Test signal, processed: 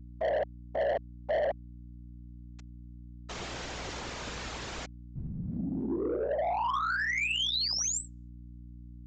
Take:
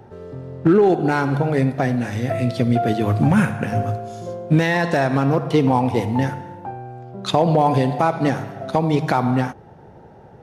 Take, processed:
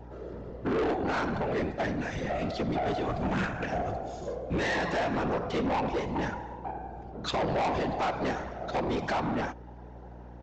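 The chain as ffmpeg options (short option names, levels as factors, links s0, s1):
-af "bass=f=250:g=-9,treble=f=4000:g=-2,afftfilt=real='hypot(re,im)*cos(2*PI*random(0))':imag='hypot(re,im)*sin(2*PI*random(1))':win_size=512:overlap=0.75,aresample=16000,asoftclip=type=tanh:threshold=0.0422,aresample=44100,aeval=exprs='0.0562*(cos(1*acos(clip(val(0)/0.0562,-1,1)))-cos(1*PI/2))+0.000891*(cos(3*acos(clip(val(0)/0.0562,-1,1)))-cos(3*PI/2))':c=same,aeval=exprs='val(0)+0.00398*(sin(2*PI*60*n/s)+sin(2*PI*2*60*n/s)/2+sin(2*PI*3*60*n/s)/3+sin(2*PI*4*60*n/s)/4+sin(2*PI*5*60*n/s)/5)':c=same,volume=1.33"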